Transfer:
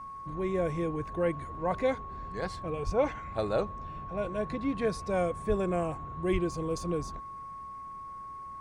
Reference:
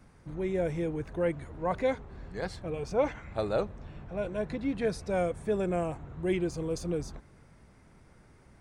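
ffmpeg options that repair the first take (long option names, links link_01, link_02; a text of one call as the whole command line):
ffmpeg -i in.wav -filter_complex "[0:a]bandreject=frequency=1100:width=30,asplit=3[link_01][link_02][link_03];[link_01]afade=type=out:start_time=2.85:duration=0.02[link_04];[link_02]highpass=frequency=140:width=0.5412,highpass=frequency=140:width=1.3066,afade=type=in:start_time=2.85:duration=0.02,afade=type=out:start_time=2.97:duration=0.02[link_05];[link_03]afade=type=in:start_time=2.97:duration=0.02[link_06];[link_04][link_05][link_06]amix=inputs=3:normalize=0,asplit=3[link_07][link_08][link_09];[link_07]afade=type=out:start_time=5.48:duration=0.02[link_10];[link_08]highpass=frequency=140:width=0.5412,highpass=frequency=140:width=1.3066,afade=type=in:start_time=5.48:duration=0.02,afade=type=out:start_time=5.6:duration=0.02[link_11];[link_09]afade=type=in:start_time=5.6:duration=0.02[link_12];[link_10][link_11][link_12]amix=inputs=3:normalize=0,asplit=3[link_13][link_14][link_15];[link_13]afade=type=out:start_time=6.32:duration=0.02[link_16];[link_14]highpass=frequency=140:width=0.5412,highpass=frequency=140:width=1.3066,afade=type=in:start_time=6.32:duration=0.02,afade=type=out:start_time=6.44:duration=0.02[link_17];[link_15]afade=type=in:start_time=6.44:duration=0.02[link_18];[link_16][link_17][link_18]amix=inputs=3:normalize=0" out.wav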